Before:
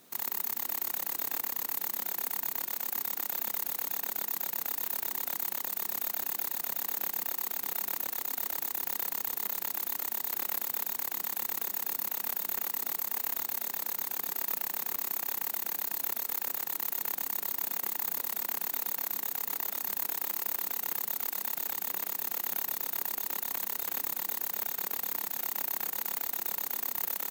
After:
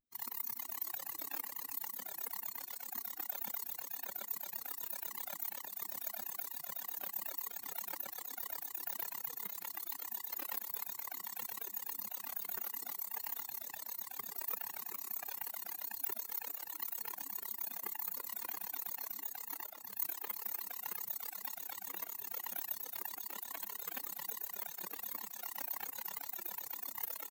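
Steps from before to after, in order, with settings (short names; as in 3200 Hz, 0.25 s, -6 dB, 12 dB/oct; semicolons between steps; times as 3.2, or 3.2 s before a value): per-bin expansion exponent 3; echo 0.155 s -19 dB; 19.66–20.43 three-band expander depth 100%; gain +2.5 dB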